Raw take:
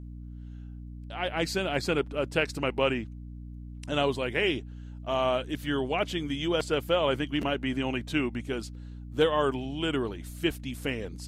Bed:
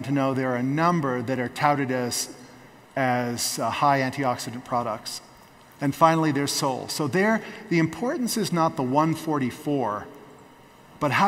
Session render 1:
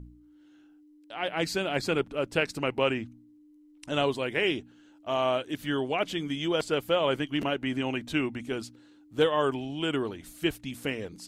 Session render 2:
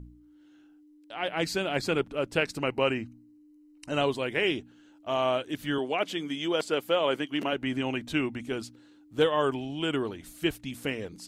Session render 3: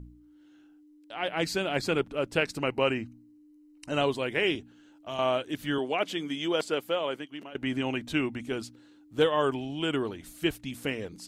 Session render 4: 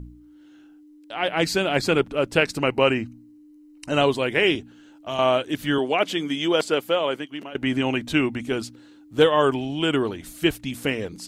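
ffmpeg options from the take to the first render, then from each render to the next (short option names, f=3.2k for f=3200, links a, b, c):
-af "bandreject=f=60:t=h:w=4,bandreject=f=120:t=h:w=4,bandreject=f=180:t=h:w=4,bandreject=f=240:t=h:w=4"
-filter_complex "[0:a]asettb=1/sr,asplit=3[a][b][c];[a]atrim=end=2.634[d];[b]atrim=start=2.63:end=4.01,asetpts=PTS-STARTPTS,afade=t=in:d=0.004:c=qsin,afade=t=out:st=1.376:d=0.004:c=qsin,asuperstop=centerf=3400:order=12:qfactor=6.4[e];[c]atrim=start=4.006[f];[d][e]acrossfade=d=0.004:c1=hsin:c2=qsin[g];[g][f]acrossfade=d=0.004:c1=qsin:c2=hsin,asettb=1/sr,asplit=3[h][i][j];[h]atrim=end=5.784[k];[i]atrim=start=5.78:end=7.53,asetpts=PTS-STARTPTS,afade=t=in:d=0.004:c=qsin,afade=t=out:st=1.746:d=0.004:c=qsin,highpass=210[l];[j]atrim=start=7.526[m];[k][l]acrossfade=d=0.004:c1=hsin:c2=qsin[n];[n][m]acrossfade=d=0.004:c1=qsin:c2=hsin"
-filter_complex "[0:a]asettb=1/sr,asplit=3[a][b][c];[a]atrim=end=4.554[d];[b]atrim=start=4.55:end=5.19,asetpts=PTS-STARTPTS,afade=t=in:d=0.004:c=qsin,afade=t=out:st=0.636:d=0.004:c=qsin,acrossover=split=170|3000[e][f][g];[f]acompressor=threshold=-39dB:ratio=2:attack=3.2:release=140:knee=2.83:detection=peak[h];[e][h][g]amix=inputs=3:normalize=0[i];[c]atrim=start=5.186[j];[d][i]acrossfade=d=0.004:c1=hsin:c2=qsin[k];[k][j]acrossfade=d=0.004:c1=qsin:c2=hsin,asplit=2[l][m];[l]atrim=end=7.55,asetpts=PTS-STARTPTS,afade=t=out:st=6.59:d=0.96:silence=0.11885[n];[m]atrim=start=7.55,asetpts=PTS-STARTPTS,afade=t=in:d=0.004:c=hsin:silence=0.11885[o];[n][o]concat=n=2:v=0:a=1"
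-af "volume=7dB"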